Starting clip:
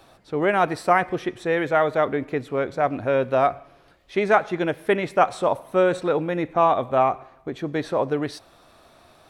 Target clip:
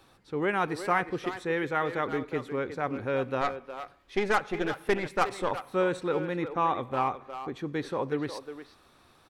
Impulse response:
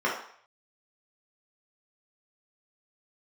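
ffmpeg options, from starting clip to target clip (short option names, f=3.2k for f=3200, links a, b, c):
-filter_complex "[0:a]equalizer=f=650:w=5.1:g=-13,asettb=1/sr,asplit=3[a][b][c];[a]atrim=end=3.414[d];[b]atrim=start=3.41:end=5.51,asetpts=PTS-STARTPTS,afade=t=in:d=0.004:c=qsin,afade=t=out:st=2.096:d=0.004:c=qsin,aeval=exprs='0.473*(cos(1*acos(clip(val(0)/0.473,-1,1)))-cos(1*PI/2))+0.0422*(cos(8*acos(clip(val(0)/0.473,-1,1)))-cos(8*PI/2))':c=same[e];[c]atrim=start=5.506[f];[d][e]acrossfade=d=0.004:c1=hsin:c2=qsin[g];[g][f]acrossfade=d=0.004:c1=qsin:c2=hsin,asplit=2[h][i];[i]adelay=360,highpass=300,lowpass=3.4k,asoftclip=type=hard:threshold=-17dB,volume=-9dB[j];[h][j]amix=inputs=2:normalize=0,volume=-5.5dB"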